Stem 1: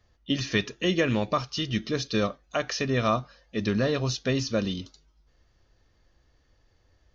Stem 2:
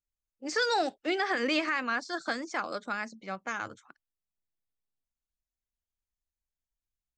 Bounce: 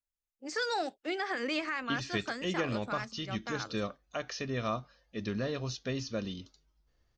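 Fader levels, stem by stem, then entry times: -9.0, -5.0 dB; 1.60, 0.00 s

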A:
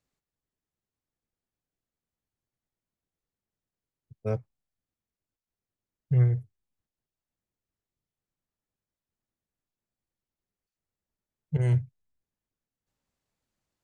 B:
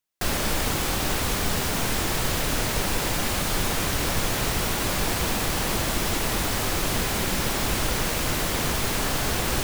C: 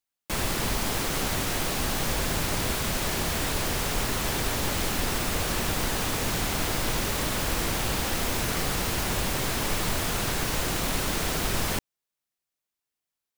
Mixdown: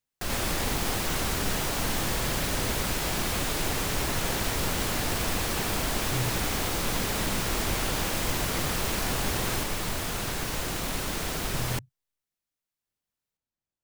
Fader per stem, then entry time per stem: -11.5, -6.5, -3.5 dB; 0.00, 0.00, 0.00 s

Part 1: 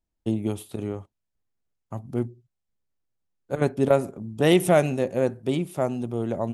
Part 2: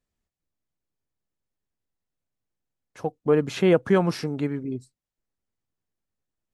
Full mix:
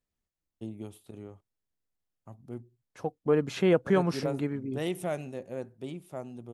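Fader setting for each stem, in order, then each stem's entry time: -14.0, -4.5 dB; 0.35, 0.00 s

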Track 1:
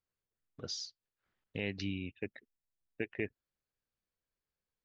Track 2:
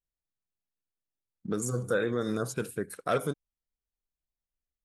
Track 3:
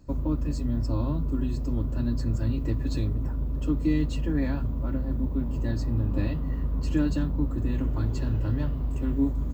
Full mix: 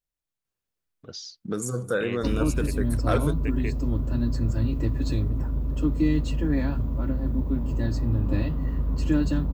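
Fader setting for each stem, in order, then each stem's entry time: +1.5, +2.0, +2.0 dB; 0.45, 0.00, 2.15 s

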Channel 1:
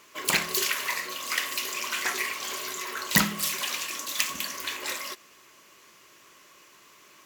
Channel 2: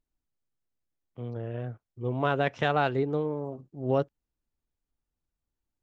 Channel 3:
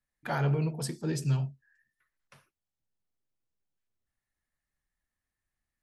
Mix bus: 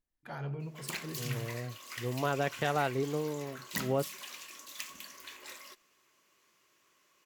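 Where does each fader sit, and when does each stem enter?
-15.0, -5.0, -11.0 dB; 0.60, 0.00, 0.00 s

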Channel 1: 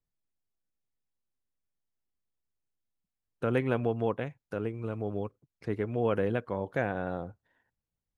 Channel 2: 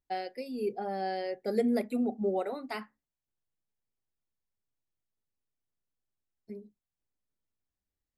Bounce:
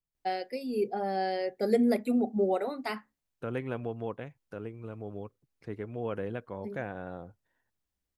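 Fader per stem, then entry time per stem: -6.5, +3.0 dB; 0.00, 0.15 s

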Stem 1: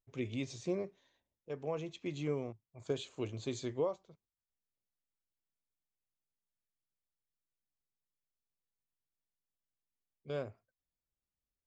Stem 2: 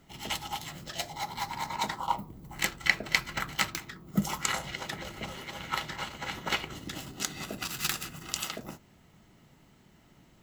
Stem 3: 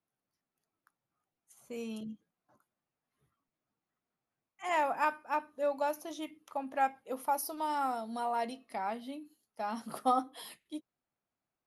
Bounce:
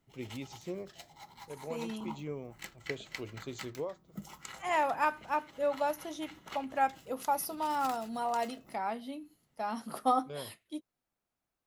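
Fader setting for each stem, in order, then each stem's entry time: -4.0, -16.5, +1.0 dB; 0.00, 0.00, 0.00 s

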